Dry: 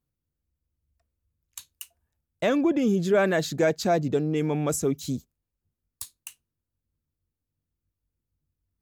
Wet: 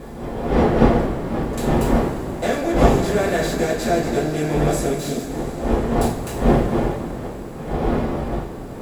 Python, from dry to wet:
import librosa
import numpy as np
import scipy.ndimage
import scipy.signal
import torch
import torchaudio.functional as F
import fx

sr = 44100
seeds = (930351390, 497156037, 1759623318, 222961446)

y = fx.bin_compress(x, sr, power=0.4)
y = fx.dmg_wind(y, sr, seeds[0], corner_hz=430.0, level_db=-19.0)
y = fx.rev_double_slope(y, sr, seeds[1], early_s=0.3, late_s=4.6, knee_db=-18, drr_db=-6.0)
y = y * librosa.db_to_amplitude(-9.0)